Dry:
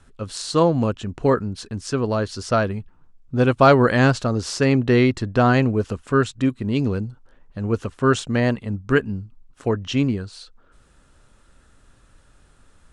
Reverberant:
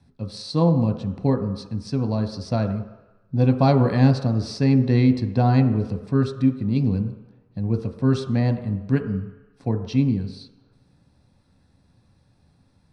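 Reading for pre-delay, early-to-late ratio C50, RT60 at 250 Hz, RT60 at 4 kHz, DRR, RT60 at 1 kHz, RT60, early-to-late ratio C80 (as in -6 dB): 3 ms, 10.0 dB, 0.80 s, 1.1 s, 6.0 dB, 1.1 s, 1.0 s, 11.5 dB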